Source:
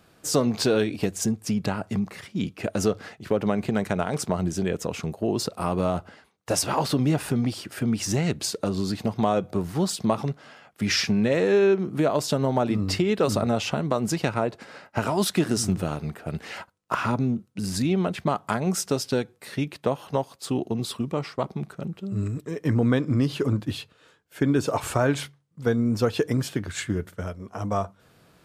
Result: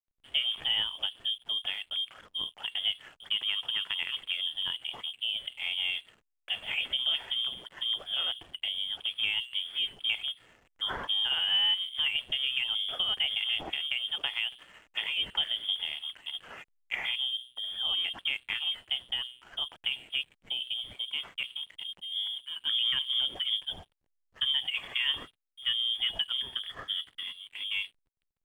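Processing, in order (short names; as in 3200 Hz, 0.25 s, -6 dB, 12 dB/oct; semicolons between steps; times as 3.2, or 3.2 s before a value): de-hum 124.8 Hz, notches 6; inverted band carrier 3400 Hz; backlash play -42 dBFS; gain -7.5 dB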